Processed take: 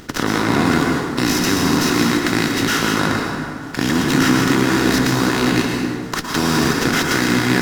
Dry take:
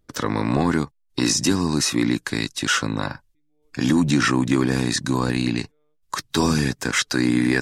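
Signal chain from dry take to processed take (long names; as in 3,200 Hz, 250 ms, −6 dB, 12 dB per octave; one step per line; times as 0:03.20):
compressor on every frequency bin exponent 0.4
dense smooth reverb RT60 2 s, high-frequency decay 0.55×, pre-delay 100 ms, DRR −0.5 dB
windowed peak hold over 3 samples
level −4 dB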